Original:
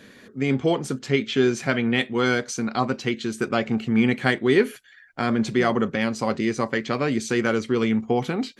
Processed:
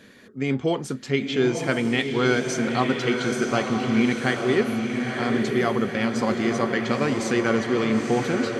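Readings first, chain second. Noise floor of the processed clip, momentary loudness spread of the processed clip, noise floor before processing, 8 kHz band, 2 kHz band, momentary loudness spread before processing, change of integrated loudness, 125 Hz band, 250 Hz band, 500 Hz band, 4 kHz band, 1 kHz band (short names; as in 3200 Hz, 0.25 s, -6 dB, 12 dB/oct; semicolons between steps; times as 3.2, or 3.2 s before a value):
-41 dBFS, 4 LU, -50 dBFS, +0.5 dB, 0.0 dB, 6 LU, 0.0 dB, 0.0 dB, 0.0 dB, 0.0 dB, 0.0 dB, +0.5 dB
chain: vocal rider 2 s; diffused feedback echo 0.933 s, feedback 53%, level -4 dB; gain -1.5 dB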